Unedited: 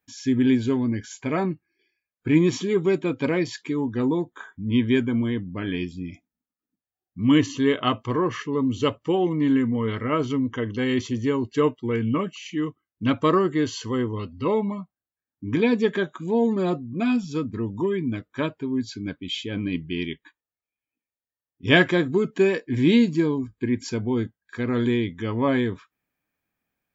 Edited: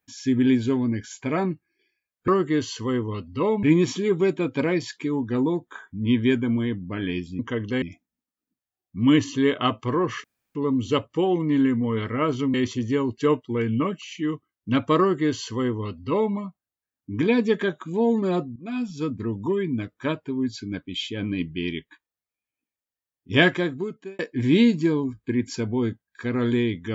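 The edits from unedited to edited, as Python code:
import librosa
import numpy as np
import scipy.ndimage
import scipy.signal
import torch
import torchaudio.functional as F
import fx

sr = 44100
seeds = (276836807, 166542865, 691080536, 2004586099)

y = fx.edit(x, sr, fx.insert_room_tone(at_s=8.46, length_s=0.31),
    fx.move(start_s=10.45, length_s=0.43, to_s=6.04),
    fx.duplicate(start_s=13.33, length_s=1.35, to_s=2.28),
    fx.fade_in_from(start_s=16.9, length_s=0.53, floor_db=-16.5),
    fx.fade_out_span(start_s=21.67, length_s=0.86), tone=tone)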